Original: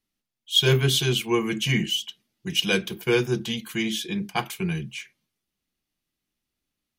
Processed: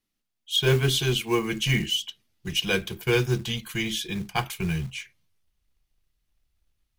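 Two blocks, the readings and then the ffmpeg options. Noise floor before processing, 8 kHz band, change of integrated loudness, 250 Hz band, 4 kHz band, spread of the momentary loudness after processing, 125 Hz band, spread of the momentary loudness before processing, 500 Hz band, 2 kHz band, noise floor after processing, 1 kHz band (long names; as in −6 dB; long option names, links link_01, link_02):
−84 dBFS, −1.5 dB, −1.5 dB, −2.5 dB, −2.0 dB, 8 LU, 0.0 dB, 10 LU, −1.5 dB, −0.5 dB, −80 dBFS, −0.5 dB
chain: -filter_complex "[0:a]asubboost=boost=12:cutoff=70,acrossover=split=2300[link_01][link_02];[link_01]acrusher=bits=5:mode=log:mix=0:aa=0.000001[link_03];[link_02]alimiter=limit=-17dB:level=0:latency=1:release=476[link_04];[link_03][link_04]amix=inputs=2:normalize=0"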